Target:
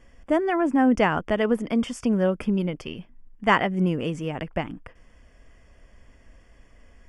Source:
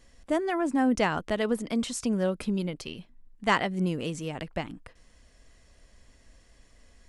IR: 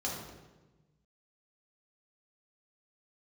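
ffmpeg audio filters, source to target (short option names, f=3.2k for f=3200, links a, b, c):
-af "asuperstop=centerf=4000:order=4:qfactor=3.7,bass=f=250:g=0,treble=f=4k:g=-12,volume=5dB"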